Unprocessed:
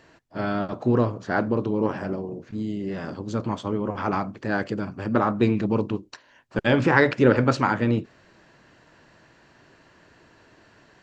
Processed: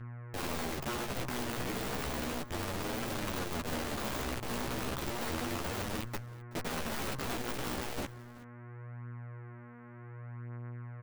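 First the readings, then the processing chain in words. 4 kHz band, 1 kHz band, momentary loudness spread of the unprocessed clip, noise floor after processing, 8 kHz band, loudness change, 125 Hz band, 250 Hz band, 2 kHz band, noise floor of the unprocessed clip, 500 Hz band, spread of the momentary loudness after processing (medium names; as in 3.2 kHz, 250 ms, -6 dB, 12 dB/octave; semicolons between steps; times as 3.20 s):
-1.0 dB, -11.0 dB, 12 LU, -50 dBFS, no reading, -13.0 dB, -12.0 dB, -15.0 dB, -12.0 dB, -57 dBFS, -15.0 dB, 12 LU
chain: local Wiener filter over 15 samples; dynamic bell 1.4 kHz, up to -4 dB, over -36 dBFS, Q 1.9; reverse; compression 8:1, threshold -28 dBFS, peak gain reduction 16 dB; reverse; Schmitt trigger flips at -43.5 dBFS; mains buzz 120 Hz, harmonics 9, -44 dBFS -6 dB/octave; Chebyshev shaper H 2 -9 dB, 3 -18 dB, 6 -42 dB, 7 -14 dB, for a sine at -25.5 dBFS; integer overflow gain 35 dB; flange 0.33 Hz, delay 8.9 ms, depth 8.1 ms, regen +4%; on a send: delay 377 ms -21 dB; on the sum: trim +7.5 dB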